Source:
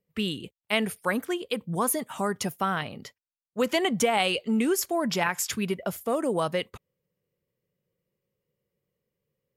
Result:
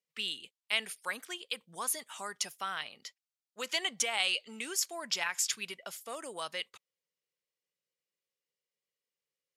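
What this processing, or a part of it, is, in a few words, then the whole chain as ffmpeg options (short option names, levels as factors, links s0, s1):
piezo pickup straight into a mixer: -af "lowpass=5600,aderivative,volume=2"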